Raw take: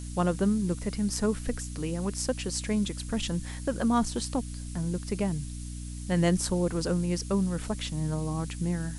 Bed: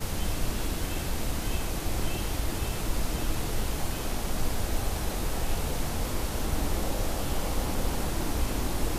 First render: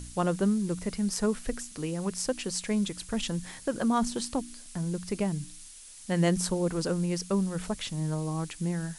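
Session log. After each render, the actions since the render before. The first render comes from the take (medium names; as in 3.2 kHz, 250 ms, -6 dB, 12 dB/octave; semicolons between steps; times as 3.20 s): de-hum 60 Hz, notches 5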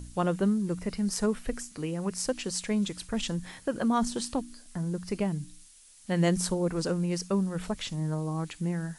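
noise print and reduce 7 dB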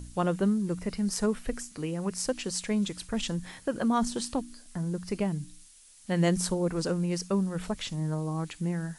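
no audible change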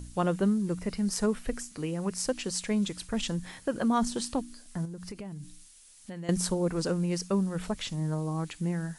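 4.85–6.29 s: compression, threshold -37 dBFS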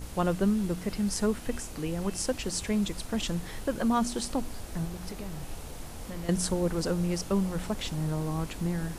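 add bed -11.5 dB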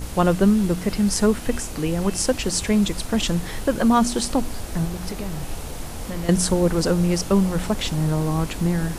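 trim +9 dB; peak limiter -3 dBFS, peak gain reduction 1.5 dB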